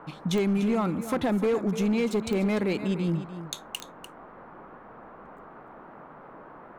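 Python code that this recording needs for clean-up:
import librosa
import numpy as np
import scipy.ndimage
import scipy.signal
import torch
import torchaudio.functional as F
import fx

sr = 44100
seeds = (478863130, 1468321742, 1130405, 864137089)

y = fx.fix_declip(x, sr, threshold_db=-20.0)
y = fx.fix_declick_ar(y, sr, threshold=10.0)
y = fx.noise_reduce(y, sr, print_start_s=4.68, print_end_s=5.18, reduce_db=26.0)
y = fx.fix_echo_inverse(y, sr, delay_ms=296, level_db=-12.0)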